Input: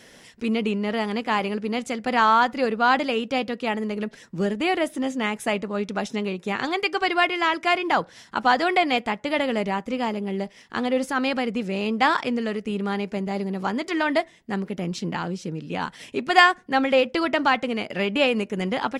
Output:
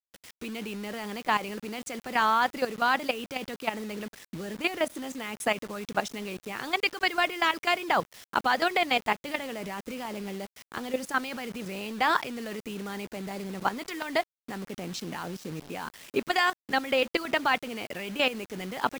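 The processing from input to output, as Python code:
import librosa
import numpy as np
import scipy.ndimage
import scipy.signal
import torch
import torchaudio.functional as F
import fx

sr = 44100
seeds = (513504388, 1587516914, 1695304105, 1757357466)

y = fx.hpss(x, sr, part='harmonic', gain_db=-7)
y = fx.level_steps(y, sr, step_db=13)
y = fx.quant_dither(y, sr, seeds[0], bits=8, dither='none')
y = y * 10.0 ** (3.0 / 20.0)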